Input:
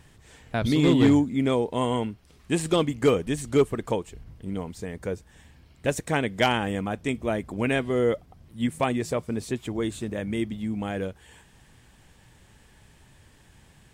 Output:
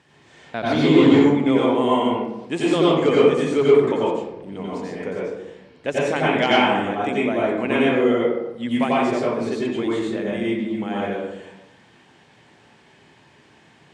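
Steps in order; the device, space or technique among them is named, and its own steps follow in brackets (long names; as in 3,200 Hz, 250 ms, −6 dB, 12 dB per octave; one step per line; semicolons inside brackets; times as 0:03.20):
supermarket ceiling speaker (band-pass filter 230–5,200 Hz; convolution reverb RT60 0.95 s, pre-delay 84 ms, DRR −6.5 dB)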